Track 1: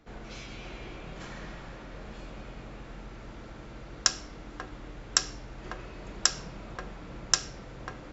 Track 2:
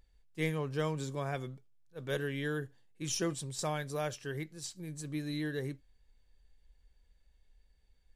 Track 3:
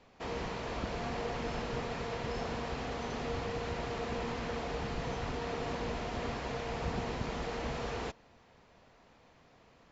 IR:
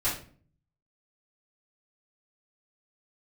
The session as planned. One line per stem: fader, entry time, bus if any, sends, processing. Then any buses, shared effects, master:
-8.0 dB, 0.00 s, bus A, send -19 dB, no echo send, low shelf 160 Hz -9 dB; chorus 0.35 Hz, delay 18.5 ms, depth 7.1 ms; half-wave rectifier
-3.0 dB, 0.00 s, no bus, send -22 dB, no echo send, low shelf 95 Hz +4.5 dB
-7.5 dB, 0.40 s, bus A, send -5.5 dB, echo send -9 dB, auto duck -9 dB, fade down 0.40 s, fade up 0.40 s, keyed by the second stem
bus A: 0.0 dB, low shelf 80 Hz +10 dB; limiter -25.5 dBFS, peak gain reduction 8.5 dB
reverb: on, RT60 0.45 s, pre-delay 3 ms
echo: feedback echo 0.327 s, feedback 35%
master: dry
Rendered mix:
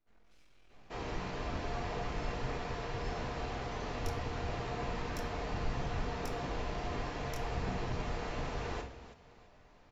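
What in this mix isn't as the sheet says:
stem 1 -8.0 dB -> -19.0 dB; stem 2: muted; stem 3: entry 0.40 s -> 0.70 s

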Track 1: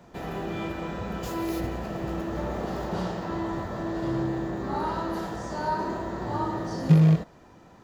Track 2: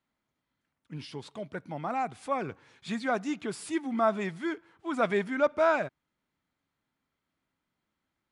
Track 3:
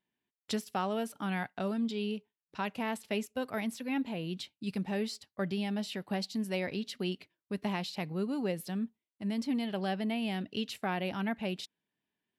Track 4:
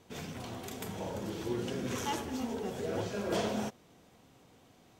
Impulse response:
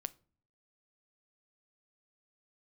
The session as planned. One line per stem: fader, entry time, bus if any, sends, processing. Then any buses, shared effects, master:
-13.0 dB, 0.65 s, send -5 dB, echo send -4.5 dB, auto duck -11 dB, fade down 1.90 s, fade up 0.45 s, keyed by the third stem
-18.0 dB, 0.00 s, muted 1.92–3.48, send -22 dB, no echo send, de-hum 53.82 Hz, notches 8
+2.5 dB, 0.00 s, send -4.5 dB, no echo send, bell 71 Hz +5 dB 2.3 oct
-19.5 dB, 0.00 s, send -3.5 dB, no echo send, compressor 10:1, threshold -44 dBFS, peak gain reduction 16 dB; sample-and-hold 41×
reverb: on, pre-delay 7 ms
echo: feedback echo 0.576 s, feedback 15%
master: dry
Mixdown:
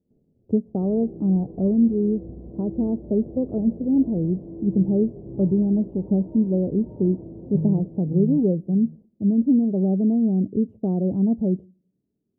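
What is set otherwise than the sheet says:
stem 1 -13.0 dB -> -4.5 dB; stem 3 +2.5 dB -> +10.0 dB; master: extra inverse Chebyshev low-pass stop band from 1600 Hz, stop band 60 dB

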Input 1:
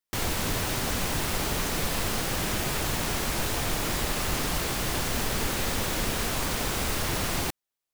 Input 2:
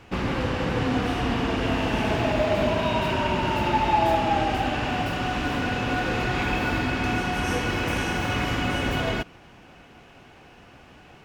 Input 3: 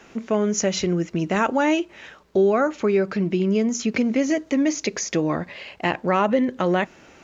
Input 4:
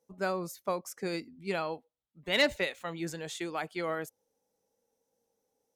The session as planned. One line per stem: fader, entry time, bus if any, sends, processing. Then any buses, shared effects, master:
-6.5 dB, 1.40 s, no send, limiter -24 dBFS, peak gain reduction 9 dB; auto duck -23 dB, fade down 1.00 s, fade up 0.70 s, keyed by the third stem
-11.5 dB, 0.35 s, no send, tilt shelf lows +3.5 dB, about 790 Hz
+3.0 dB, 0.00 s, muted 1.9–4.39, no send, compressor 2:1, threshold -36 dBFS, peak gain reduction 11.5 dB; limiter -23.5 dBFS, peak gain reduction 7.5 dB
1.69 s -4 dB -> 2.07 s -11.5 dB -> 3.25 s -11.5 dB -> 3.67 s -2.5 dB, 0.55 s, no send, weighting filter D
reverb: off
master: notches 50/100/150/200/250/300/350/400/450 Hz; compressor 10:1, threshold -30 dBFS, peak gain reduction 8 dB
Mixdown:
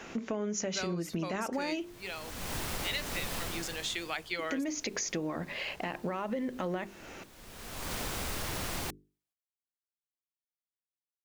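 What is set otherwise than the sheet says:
stem 1: missing limiter -24 dBFS, peak gain reduction 9 dB; stem 2: muted

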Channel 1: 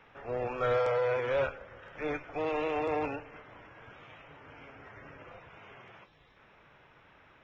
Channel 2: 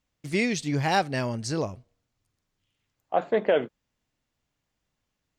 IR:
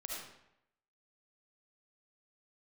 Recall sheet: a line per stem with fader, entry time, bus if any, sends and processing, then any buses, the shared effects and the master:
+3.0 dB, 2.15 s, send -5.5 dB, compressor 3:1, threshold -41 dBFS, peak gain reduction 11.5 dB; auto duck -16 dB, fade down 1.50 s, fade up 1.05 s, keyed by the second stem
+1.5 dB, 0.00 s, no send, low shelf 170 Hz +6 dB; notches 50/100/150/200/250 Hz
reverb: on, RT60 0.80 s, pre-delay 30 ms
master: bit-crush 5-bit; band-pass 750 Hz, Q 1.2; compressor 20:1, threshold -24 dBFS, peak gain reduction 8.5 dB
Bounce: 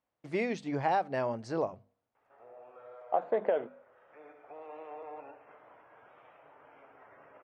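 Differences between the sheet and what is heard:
stem 1 +3.0 dB -> -4.0 dB; master: missing bit-crush 5-bit

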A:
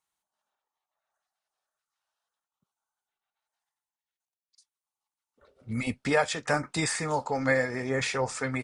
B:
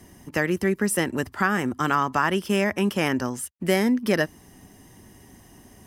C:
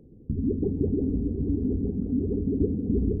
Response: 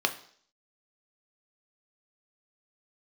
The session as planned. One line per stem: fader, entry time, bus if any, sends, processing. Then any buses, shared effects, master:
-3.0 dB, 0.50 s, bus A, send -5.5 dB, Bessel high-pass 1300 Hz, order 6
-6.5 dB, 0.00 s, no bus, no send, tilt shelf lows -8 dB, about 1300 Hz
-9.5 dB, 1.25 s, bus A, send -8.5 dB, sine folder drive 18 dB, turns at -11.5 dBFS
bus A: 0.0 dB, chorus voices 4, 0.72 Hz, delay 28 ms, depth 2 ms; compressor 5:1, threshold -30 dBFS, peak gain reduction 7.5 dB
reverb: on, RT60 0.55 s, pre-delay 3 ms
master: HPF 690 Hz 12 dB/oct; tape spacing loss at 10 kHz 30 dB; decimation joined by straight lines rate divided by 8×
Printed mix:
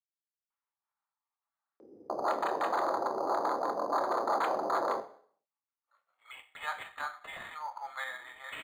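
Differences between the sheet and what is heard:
stem B: muted; stem C: entry 1.25 s -> 1.80 s

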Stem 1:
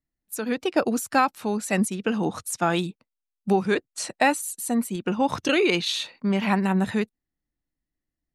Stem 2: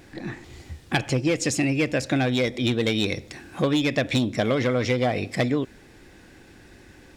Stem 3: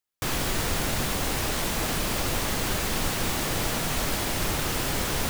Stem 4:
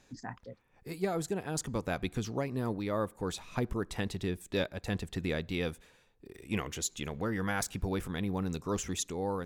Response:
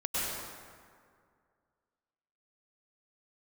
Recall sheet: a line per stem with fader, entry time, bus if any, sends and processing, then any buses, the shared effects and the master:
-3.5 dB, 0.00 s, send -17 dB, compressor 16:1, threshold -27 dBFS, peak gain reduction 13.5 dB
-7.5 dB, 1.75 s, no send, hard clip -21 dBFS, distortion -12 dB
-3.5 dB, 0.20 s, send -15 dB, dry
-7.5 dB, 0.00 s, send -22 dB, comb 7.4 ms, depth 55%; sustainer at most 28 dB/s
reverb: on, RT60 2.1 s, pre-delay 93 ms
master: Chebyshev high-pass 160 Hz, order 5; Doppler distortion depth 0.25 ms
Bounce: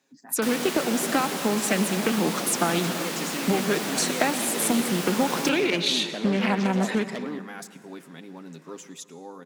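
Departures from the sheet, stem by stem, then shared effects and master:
stem 1 -3.5 dB -> +6.5 dB; stem 4: missing sustainer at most 28 dB/s

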